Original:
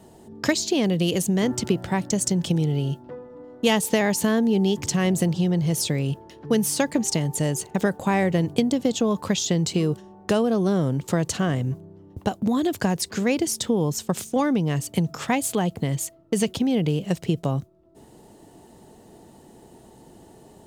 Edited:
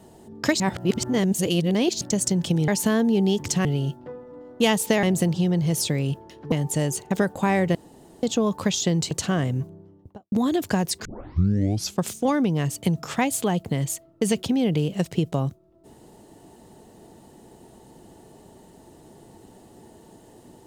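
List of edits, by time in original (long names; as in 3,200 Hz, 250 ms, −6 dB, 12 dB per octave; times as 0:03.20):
0:00.60–0:02.01: reverse
0:04.06–0:05.03: move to 0:02.68
0:06.52–0:07.16: remove
0:08.39–0:08.87: fill with room tone
0:09.75–0:11.22: remove
0:11.77–0:12.43: fade out and dull
0:13.16: tape start 0.96 s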